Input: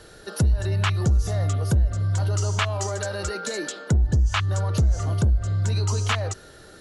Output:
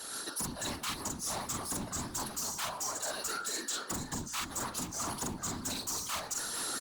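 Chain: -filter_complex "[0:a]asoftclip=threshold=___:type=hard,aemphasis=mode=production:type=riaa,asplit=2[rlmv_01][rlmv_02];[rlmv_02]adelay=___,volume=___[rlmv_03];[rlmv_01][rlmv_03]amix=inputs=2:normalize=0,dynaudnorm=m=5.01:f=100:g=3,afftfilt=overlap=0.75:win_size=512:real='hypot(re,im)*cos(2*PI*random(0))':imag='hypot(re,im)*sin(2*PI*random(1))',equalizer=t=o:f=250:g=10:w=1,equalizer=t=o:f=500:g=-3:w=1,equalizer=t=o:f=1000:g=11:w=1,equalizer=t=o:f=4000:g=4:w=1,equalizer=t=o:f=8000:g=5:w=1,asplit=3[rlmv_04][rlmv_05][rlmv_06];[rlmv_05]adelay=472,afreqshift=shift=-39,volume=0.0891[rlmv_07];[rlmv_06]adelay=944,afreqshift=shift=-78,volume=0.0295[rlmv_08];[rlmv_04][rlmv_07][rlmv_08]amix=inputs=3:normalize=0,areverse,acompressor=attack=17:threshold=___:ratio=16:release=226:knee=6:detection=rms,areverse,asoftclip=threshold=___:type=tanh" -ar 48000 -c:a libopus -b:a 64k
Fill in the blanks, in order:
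0.0596, 45, 0.335, 0.0282, 0.0398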